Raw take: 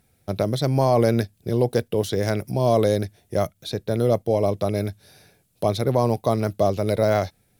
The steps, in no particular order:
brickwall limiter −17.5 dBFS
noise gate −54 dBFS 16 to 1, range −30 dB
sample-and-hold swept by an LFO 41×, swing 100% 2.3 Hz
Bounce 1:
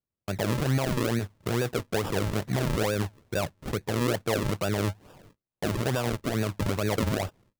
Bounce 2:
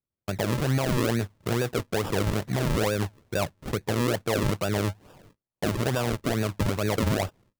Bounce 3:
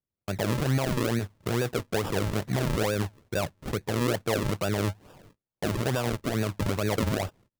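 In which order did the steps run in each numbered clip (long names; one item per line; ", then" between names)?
noise gate, then brickwall limiter, then sample-and-hold swept by an LFO
noise gate, then sample-and-hold swept by an LFO, then brickwall limiter
brickwall limiter, then noise gate, then sample-and-hold swept by an LFO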